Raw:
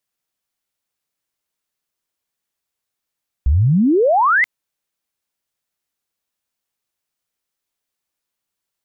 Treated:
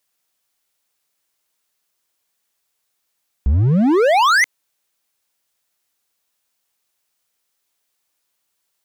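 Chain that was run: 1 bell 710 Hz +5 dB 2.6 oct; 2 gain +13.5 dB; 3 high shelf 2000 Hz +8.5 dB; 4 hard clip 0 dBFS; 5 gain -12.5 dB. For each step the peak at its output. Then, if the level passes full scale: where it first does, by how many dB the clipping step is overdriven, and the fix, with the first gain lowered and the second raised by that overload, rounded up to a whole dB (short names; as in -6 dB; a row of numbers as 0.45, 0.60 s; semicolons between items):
-5.5, +8.0, +9.0, 0.0, -12.5 dBFS; step 2, 9.0 dB; step 2 +4.5 dB, step 5 -3.5 dB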